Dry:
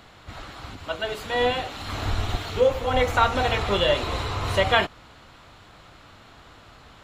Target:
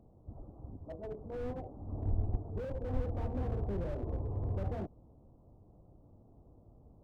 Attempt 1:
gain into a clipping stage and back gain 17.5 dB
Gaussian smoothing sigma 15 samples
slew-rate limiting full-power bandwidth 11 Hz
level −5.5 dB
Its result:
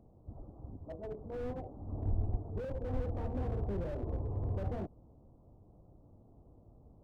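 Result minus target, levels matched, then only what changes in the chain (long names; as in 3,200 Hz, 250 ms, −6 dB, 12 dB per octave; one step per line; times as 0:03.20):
gain into a clipping stage and back: distortion +19 dB
change: gain into a clipping stage and back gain 9 dB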